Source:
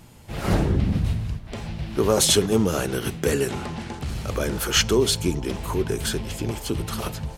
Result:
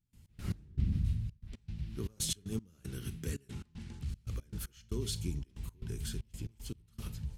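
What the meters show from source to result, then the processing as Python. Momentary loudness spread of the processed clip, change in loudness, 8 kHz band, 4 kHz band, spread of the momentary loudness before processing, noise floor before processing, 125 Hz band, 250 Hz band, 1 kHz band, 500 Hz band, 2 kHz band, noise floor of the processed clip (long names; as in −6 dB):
12 LU, −16.0 dB, −17.0 dB, −19.5 dB, 13 LU, −39 dBFS, −11.5 dB, −17.5 dB, −29.5 dB, −25.5 dB, −24.5 dB, −67 dBFS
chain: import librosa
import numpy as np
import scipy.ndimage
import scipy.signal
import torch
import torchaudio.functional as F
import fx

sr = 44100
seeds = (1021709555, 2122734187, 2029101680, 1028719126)

y = fx.tone_stack(x, sr, knobs='6-0-2')
y = fx.rev_schroeder(y, sr, rt60_s=0.32, comb_ms=28, drr_db=15.5)
y = fx.step_gate(y, sr, bpm=116, pattern='.x.x..xxxx.x.xxx', floor_db=-24.0, edge_ms=4.5)
y = fx.low_shelf(y, sr, hz=470.0, db=6.0)
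y = y * librosa.db_to_amplitude(-1.0)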